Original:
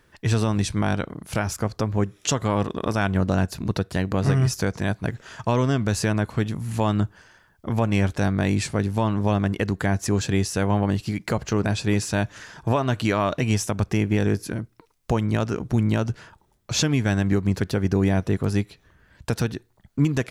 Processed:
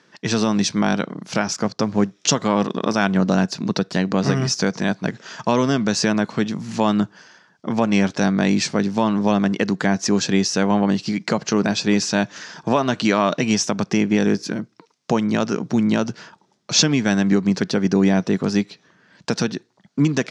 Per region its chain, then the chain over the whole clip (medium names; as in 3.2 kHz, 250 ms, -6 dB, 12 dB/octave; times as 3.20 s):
1.64–2.35 s: companding laws mixed up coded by A + bass shelf 110 Hz +7.5 dB
whole clip: Chebyshev band-pass 180–5700 Hz, order 3; tone controls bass +3 dB, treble +8 dB; trim +4.5 dB